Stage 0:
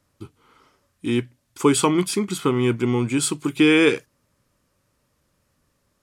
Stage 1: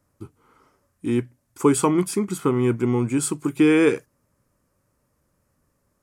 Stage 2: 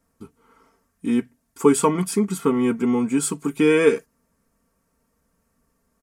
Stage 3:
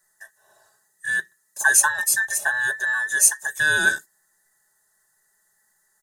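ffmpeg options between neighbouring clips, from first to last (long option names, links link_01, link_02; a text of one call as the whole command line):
ffmpeg -i in.wav -af "equalizer=frequency=3500:width_type=o:width=1.3:gain=-11.5" out.wav
ffmpeg -i in.wav -af "aecho=1:1:4.4:0.8,volume=-1dB" out.wav
ffmpeg -i in.wav -af "afftfilt=real='real(if(between(b,1,1012),(2*floor((b-1)/92)+1)*92-b,b),0)':imag='imag(if(between(b,1,1012),(2*floor((b-1)/92)+1)*92-b,b),0)*if(between(b,1,1012),-1,1)':win_size=2048:overlap=0.75,highshelf=frequency=4700:width_type=q:width=1.5:gain=11.5,volume=-2.5dB" out.wav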